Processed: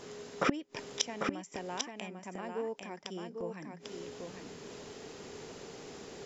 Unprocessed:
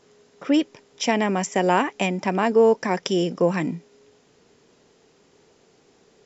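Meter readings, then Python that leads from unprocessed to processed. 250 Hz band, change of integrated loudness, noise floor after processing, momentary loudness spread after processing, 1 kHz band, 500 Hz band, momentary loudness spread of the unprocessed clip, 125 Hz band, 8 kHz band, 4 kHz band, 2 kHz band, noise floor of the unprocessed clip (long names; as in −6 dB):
−16.5 dB, −17.5 dB, −54 dBFS, 14 LU, −16.0 dB, −17.5 dB, 11 LU, −17.0 dB, can't be measured, −8.5 dB, −13.0 dB, −59 dBFS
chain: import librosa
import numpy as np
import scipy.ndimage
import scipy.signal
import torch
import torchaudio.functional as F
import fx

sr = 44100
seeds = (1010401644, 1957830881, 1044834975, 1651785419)

y = fx.gate_flip(x, sr, shuts_db=-23.0, range_db=-31)
y = y + 10.0 ** (-5.0 / 20.0) * np.pad(y, (int(796 * sr / 1000.0), 0))[:len(y)]
y = F.gain(torch.from_numpy(y), 9.5).numpy()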